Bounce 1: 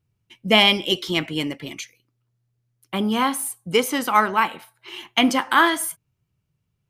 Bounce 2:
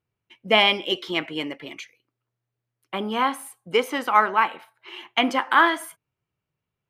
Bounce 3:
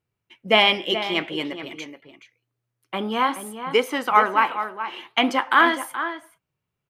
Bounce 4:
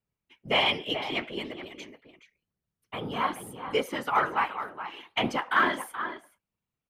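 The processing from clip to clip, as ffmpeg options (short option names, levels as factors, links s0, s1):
-af "bass=f=250:g=-13,treble=f=4000:g=-13"
-filter_complex "[0:a]flanger=delay=0.4:depth=9.2:regen=-85:speed=0.53:shape=sinusoidal,asplit=2[s0][s1];[s1]adelay=425.7,volume=0.316,highshelf=f=4000:g=-9.58[s2];[s0][s2]amix=inputs=2:normalize=0,volume=1.88"
-filter_complex "[0:a]afftfilt=real='hypot(re,im)*cos(2*PI*random(0))':imag='hypot(re,im)*sin(2*PI*random(1))':win_size=512:overlap=0.75,asplit=2[s0][s1];[s1]asoftclip=type=tanh:threshold=0.15,volume=0.316[s2];[s0][s2]amix=inputs=2:normalize=0,volume=0.668"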